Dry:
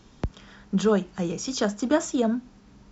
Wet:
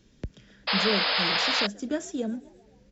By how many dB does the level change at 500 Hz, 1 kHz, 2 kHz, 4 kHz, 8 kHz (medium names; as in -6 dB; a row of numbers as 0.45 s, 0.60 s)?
-6.0 dB, +3.0 dB, +9.5 dB, +13.0 dB, no reading